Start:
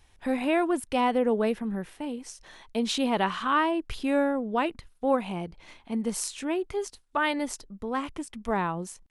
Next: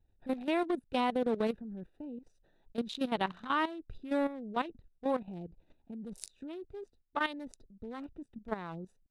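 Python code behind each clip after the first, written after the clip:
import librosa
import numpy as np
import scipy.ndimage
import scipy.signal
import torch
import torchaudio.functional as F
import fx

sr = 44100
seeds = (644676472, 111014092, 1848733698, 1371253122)

y = fx.wiener(x, sr, points=41)
y = fx.peak_eq(y, sr, hz=3800.0, db=8.5, octaves=0.33)
y = fx.level_steps(y, sr, step_db=13)
y = F.gain(torch.from_numpy(y), -3.0).numpy()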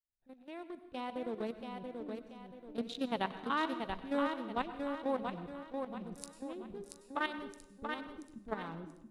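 y = fx.fade_in_head(x, sr, length_s=2.47)
y = fx.echo_feedback(y, sr, ms=682, feedback_pct=38, wet_db=-5.0)
y = fx.rev_plate(y, sr, seeds[0], rt60_s=0.82, hf_ratio=0.9, predelay_ms=85, drr_db=11.5)
y = F.gain(torch.from_numpy(y), -3.0).numpy()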